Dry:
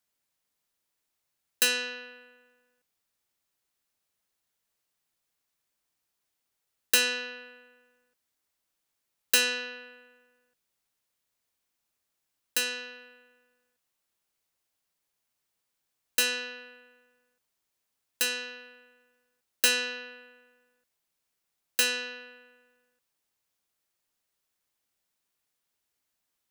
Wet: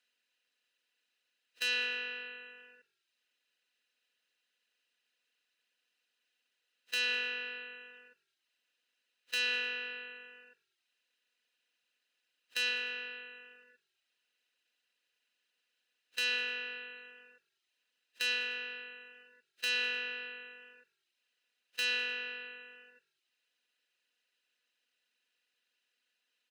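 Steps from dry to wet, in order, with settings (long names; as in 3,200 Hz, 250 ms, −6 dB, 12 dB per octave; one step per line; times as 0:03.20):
compressor on every frequency bin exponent 0.6
meter weighting curve D
noise reduction from a noise print of the clip's start 20 dB
bass and treble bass −4 dB, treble −12 dB
on a send: echo with shifted repeats 100 ms, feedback 41%, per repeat −46 Hz, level −22 dB
on the sum: reverb reduction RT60 0.55 s
in parallel at −2 dB: downward compressor, threshold −33 dBFS, peak gain reduction 18 dB
on the sum: brickwall limiter −15 dBFS, peak gain reduction 11.5 dB
level −8 dB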